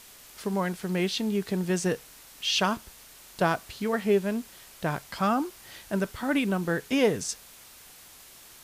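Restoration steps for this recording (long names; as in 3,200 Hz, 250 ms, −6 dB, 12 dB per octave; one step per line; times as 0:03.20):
broadband denoise 22 dB, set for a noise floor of −51 dBFS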